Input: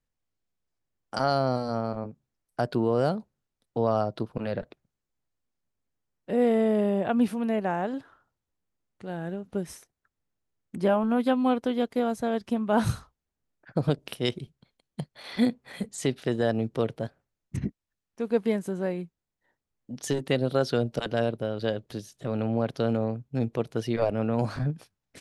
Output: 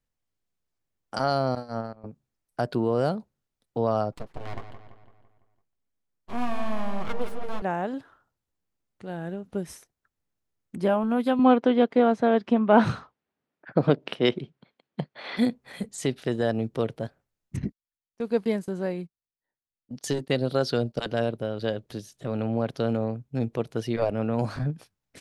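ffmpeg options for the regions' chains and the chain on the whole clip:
-filter_complex "[0:a]asettb=1/sr,asplit=3[a][b][c];[a]atrim=end=1.554[d];[b]atrim=start=1.55:end=2.04,asetpts=PTS-STARTPTS,afade=t=in:d=0.004:c=qsin,afade=t=out:st=0.486:d=0.004:c=qsin,agate=range=-19dB:threshold=-30dB:ratio=16:release=100:detection=peak,bandreject=f=7.5k:w=27[e];[c]atrim=start=2.036[f];[d][e]acrossfade=d=0.004:c1=hsin:c2=qsin[g];[g][f]acrossfade=d=0.004:c1=qsin:c2=hsin,asettb=1/sr,asplit=3[h][i][j];[h]atrim=end=4.124[k];[i]atrim=start=4.12:end=7.62,asetpts=PTS-STARTPTS,afade=t=in:d=0.004:c=qsin,afade=t=out:st=3.496:d=0.004:c=qsin,aeval=exprs='abs(val(0))':c=same,flanger=delay=3.4:depth=5.4:regen=-40:speed=1.1:shape=triangular,asplit=2[l][m];[m]adelay=168,lowpass=f=4.6k:p=1,volume=-9.5dB,asplit=2[n][o];[o]adelay=168,lowpass=f=4.6k:p=1,volume=0.52,asplit=2[p][q];[q]adelay=168,lowpass=f=4.6k:p=1,volume=0.52,asplit=2[r][s];[s]adelay=168,lowpass=f=4.6k:p=1,volume=0.52,asplit=2[t][u];[u]adelay=168,lowpass=f=4.6k:p=1,volume=0.52,asplit=2[v][w];[w]adelay=168,lowpass=f=4.6k:p=1,volume=0.52[x];[l][n][p][r][t][v][x]amix=inputs=7:normalize=0,atrim=end_sample=154350[y];[j]atrim=start=7.616[z];[k][y]acrossfade=d=0.004:c1=hsin:c2=qsin[aa];[aa][z]acrossfade=d=0.004:c1=qsin:c2=hsin,asettb=1/sr,asplit=3[ab][ac][ad];[ab]atrim=end=11.394[ae];[ac]atrim=start=11.39:end=15.37,asetpts=PTS-STARTPTS,afade=t=in:d=0.004:c=qsin,afade=t=out:st=3.976:d=0.004:c=qsin,acontrast=87,highpass=190,lowpass=2.9k[af];[ad]atrim=start=15.366[ag];[ae][af]acrossfade=d=0.004:c1=hsin:c2=qsin[ah];[ah][ag]acrossfade=d=0.004:c1=qsin:c2=hsin,asettb=1/sr,asplit=3[ai][aj][ak];[ai]atrim=end=17.624[al];[aj]atrim=start=17.62:end=21.11,asetpts=PTS-STARTPTS,afade=t=in:d=0.004:c=qsin,afade=t=out:st=3.486:d=0.004:c=qsin,agate=range=-17dB:threshold=-42dB:ratio=16:release=100:detection=peak,equalizer=f=4.6k:w=4.1:g=6.5[am];[ak]atrim=start=21.106[an];[al][am]acrossfade=d=0.004:c1=hsin:c2=qsin[ao];[ao][an]acrossfade=d=0.004:c1=qsin:c2=hsin"

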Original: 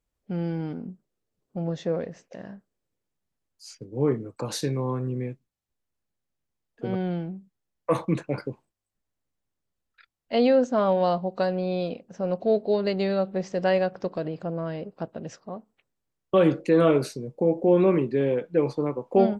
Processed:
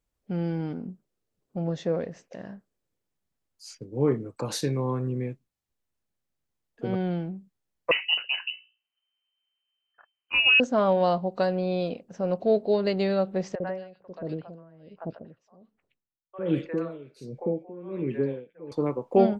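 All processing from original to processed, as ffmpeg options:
-filter_complex "[0:a]asettb=1/sr,asplit=3[a][b][c];[a]atrim=end=7.914[d];[b]atrim=start=7.91:end=10.6,asetpts=PTS-STARTPTS,afade=t=in:d=0.004:c=qsin,afade=t=out:st=2.686:d=0.004:c=qsin,bandreject=f=60:t=h:w=6,bandreject=f=120:t=h:w=6,bandreject=f=180:t=h:w=6,bandreject=f=240:t=h:w=6,bandreject=f=300:t=h:w=6,bandreject=f=360:t=h:w=6,bandreject=f=420:t=h:w=6,bandreject=f=480:t=h:w=6,lowpass=f=2.6k:t=q:w=0.5098,lowpass=f=2.6k:t=q:w=0.6013,lowpass=f=2.6k:t=q:w=0.9,lowpass=f=2.6k:t=q:w=2.563,afreqshift=-3100[e];[c]atrim=start=10.596[f];[d][e]acrossfade=d=0.004:c1=hsin:c2=qsin[g];[g][f]acrossfade=d=0.004:c1=qsin:c2=hsin,asettb=1/sr,asplit=3[h][i][j];[h]atrim=end=13.554[k];[i]atrim=start=13.55:end=18.72,asetpts=PTS-STARTPTS,afade=t=in:d=0.004:c=qsin,afade=t=out:st=5.166:d=0.004:c=qsin,lowpass=f=2.8k:p=1,acrossover=split=640|2100[l][m][n];[l]adelay=50[o];[n]adelay=120[p];[o][m][p]amix=inputs=3:normalize=0,atrim=end_sample=227997,aeval=exprs='val(0)*pow(10,-21*(0.5-0.5*cos(2*PI*1.3*n/s))/20)':c=same[q];[j]atrim=start=18.716[r];[k][q]acrossfade=d=0.004:c1=hsin:c2=qsin[s];[s][r]acrossfade=d=0.004:c1=qsin:c2=hsin"

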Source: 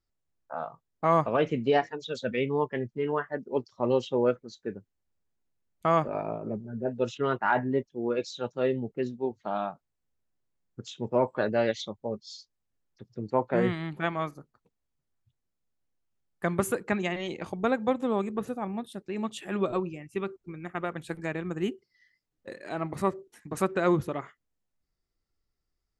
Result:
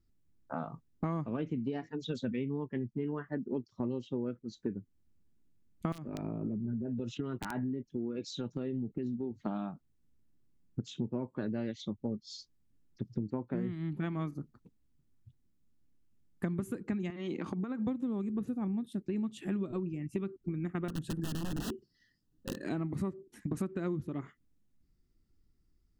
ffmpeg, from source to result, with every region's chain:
-filter_complex "[0:a]asettb=1/sr,asplit=3[a][b][c];[a]atrim=end=5.924[d];[b]atrim=start=5.92:end=9.4,asetpts=PTS-STARTPTS,afade=t=in:d=0.004:c=qsin,afade=t=out:st=3.476:d=0.004:c=qsin,acompressor=threshold=-39dB:ratio=3:attack=3.2:release=140:knee=1:detection=peak,aeval=exprs='(mod(23.7*val(0)+1,2)-1)/23.7':c=same[e];[c]atrim=start=9.396[f];[d][e]acrossfade=d=0.004:c1=hsin:c2=qsin[g];[g][f]acrossfade=d=0.004:c1=qsin:c2=hsin,asettb=1/sr,asplit=3[h][i][j];[h]atrim=end=17.104[k];[i]atrim=start=17.1:end=17.87,asetpts=PTS-STARTPTS,afade=t=in:d=0.004:c=qsin,afade=t=out:st=0.766:d=0.004:c=qsin,equalizer=f=1.2k:t=o:w=0.65:g=8.5,acompressor=threshold=-35dB:ratio=10:attack=3.2:release=140:knee=1:detection=peak,highpass=190,lowpass=7.3k[l];[j]atrim=start=17.866[m];[k][l]acrossfade=d=0.004:c1=hsin:c2=qsin[n];[n][m]acrossfade=d=0.004:c1=qsin:c2=hsin,asettb=1/sr,asplit=3[o][p][q];[o]atrim=end=20.884[r];[p]atrim=start=20.88:end=22.64,asetpts=PTS-STARTPTS,afade=t=in:d=0.004:c=qsin,afade=t=out:st=1.756:d=0.004:c=qsin,aeval=exprs='(mod(33.5*val(0)+1,2)-1)/33.5':c=same,asuperstop=centerf=2200:order=8:qfactor=3.3[s];[q]atrim=start=22.636[t];[r][s]acrossfade=d=0.004:c1=hsin:c2=qsin[u];[u][t]acrossfade=d=0.004:c1=qsin:c2=hsin,lowshelf=f=400:t=q:w=1.5:g=11.5,acompressor=threshold=-32dB:ratio=10"

